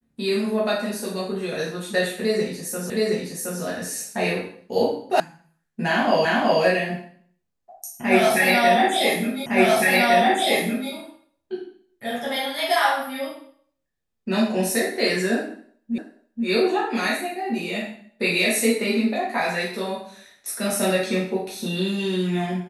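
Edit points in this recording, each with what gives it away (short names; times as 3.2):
2.9 repeat of the last 0.72 s
5.2 sound cut off
6.25 repeat of the last 0.37 s
9.46 repeat of the last 1.46 s
15.98 repeat of the last 0.48 s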